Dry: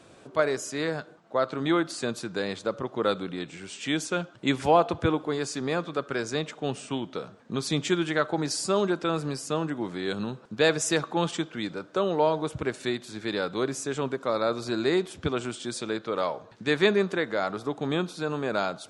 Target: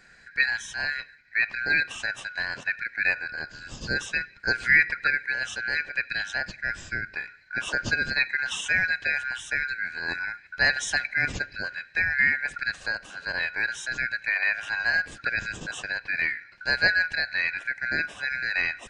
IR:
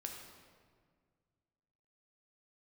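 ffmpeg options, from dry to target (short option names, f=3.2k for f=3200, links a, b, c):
-af "afftfilt=real='real(if(lt(b,272),68*(eq(floor(b/68),0)*2+eq(floor(b/68),1)*0+eq(floor(b/68),2)*3+eq(floor(b/68),3)*1)+mod(b,68),b),0)':imag='imag(if(lt(b,272),68*(eq(floor(b/68),0)*2+eq(floor(b/68),1)*0+eq(floor(b/68),2)*3+eq(floor(b/68),3)*1)+mod(b,68),b),0)':win_size=2048:overlap=0.75,adynamicequalizer=threshold=0.01:dfrequency=2700:dqfactor=2.2:tfrequency=2700:tqfactor=2.2:attack=5:release=100:ratio=0.375:range=2.5:mode=boostabove:tftype=bell,asetrate=39289,aresample=44100,atempo=1.12246,bass=f=250:g=13,treble=f=4k:g=-2,volume=-1.5dB"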